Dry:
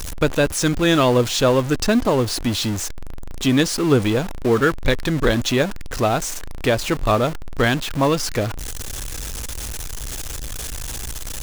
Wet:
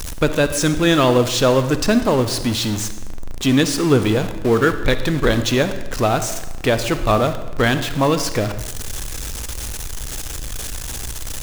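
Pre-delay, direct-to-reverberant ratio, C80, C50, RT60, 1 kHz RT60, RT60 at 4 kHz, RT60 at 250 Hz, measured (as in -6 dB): 36 ms, 10.0 dB, 12.5 dB, 10.5 dB, 1.1 s, 1.0 s, 0.90 s, 1.1 s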